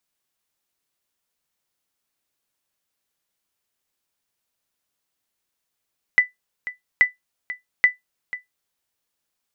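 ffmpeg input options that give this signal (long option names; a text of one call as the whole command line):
ffmpeg -f lavfi -i "aevalsrc='0.531*(sin(2*PI*1990*mod(t,0.83))*exp(-6.91*mod(t,0.83)/0.15)+0.168*sin(2*PI*1990*max(mod(t,0.83)-0.49,0))*exp(-6.91*max(mod(t,0.83)-0.49,0)/0.15))':duration=2.49:sample_rate=44100" out.wav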